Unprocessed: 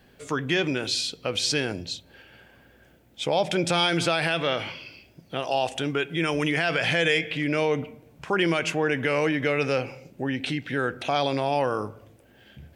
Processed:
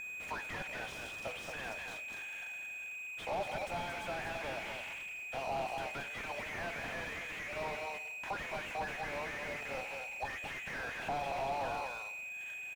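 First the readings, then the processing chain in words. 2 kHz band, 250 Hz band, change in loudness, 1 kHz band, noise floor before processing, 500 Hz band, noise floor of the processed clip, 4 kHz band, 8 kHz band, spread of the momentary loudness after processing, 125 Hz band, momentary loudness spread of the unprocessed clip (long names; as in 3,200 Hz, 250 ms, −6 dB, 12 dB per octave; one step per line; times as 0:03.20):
−10.5 dB, −22.5 dB, −14.0 dB, −9.5 dB, −57 dBFS, −15.5 dB, −45 dBFS, −19.0 dB, −15.0 dB, 4 LU, −19.5 dB, 11 LU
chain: downward expander −51 dBFS
high-pass filter 770 Hz 24 dB per octave
downward compressor 5 to 1, threshold −32 dBFS, peak gain reduction 11.5 dB
steady tone 2,500 Hz −38 dBFS
flanger 0.61 Hz, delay 5.4 ms, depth 8 ms, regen +85%
phaser with its sweep stopped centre 1,200 Hz, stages 6
single-tap delay 225 ms −7 dB
slew-rate limiting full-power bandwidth 5.1 Hz
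level +10.5 dB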